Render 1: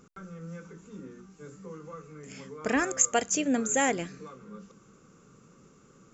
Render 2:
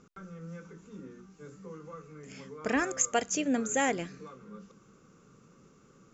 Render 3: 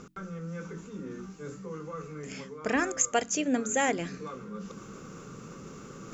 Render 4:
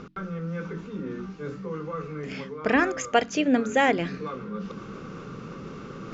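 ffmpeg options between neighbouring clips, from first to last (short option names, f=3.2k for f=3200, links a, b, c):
-af "lowpass=f=7k:w=0.5412,lowpass=f=7k:w=1.3066,volume=-2dB"
-af "bandreject=f=45.34:t=h:w=4,bandreject=f=90.68:t=h:w=4,bandreject=f=136.02:t=h:w=4,bandreject=f=181.36:t=h:w=4,bandreject=f=226.7:t=h:w=4,bandreject=f=272.04:t=h:w=4,bandreject=f=317.38:t=h:w=4,areverse,acompressor=mode=upward:threshold=-33dB:ratio=2.5,areverse,volume=1.5dB"
-af "lowpass=f=4.5k:w=0.5412,lowpass=f=4.5k:w=1.3066,volume=6dB"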